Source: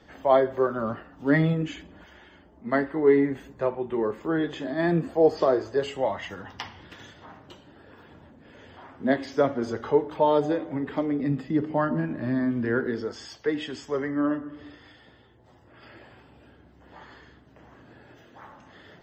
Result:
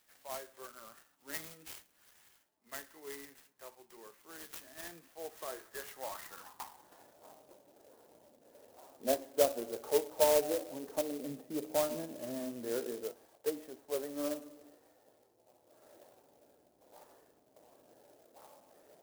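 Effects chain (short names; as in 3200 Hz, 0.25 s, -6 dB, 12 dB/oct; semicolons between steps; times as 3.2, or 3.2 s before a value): band-pass sweep 3300 Hz -> 590 Hz, 5–7.27; clock jitter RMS 0.094 ms; gain -3.5 dB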